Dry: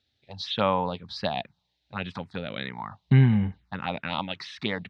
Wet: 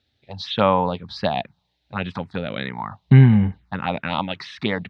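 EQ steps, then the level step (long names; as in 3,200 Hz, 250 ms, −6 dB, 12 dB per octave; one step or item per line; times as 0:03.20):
high-shelf EQ 3,200 Hz −7.5 dB
+7.0 dB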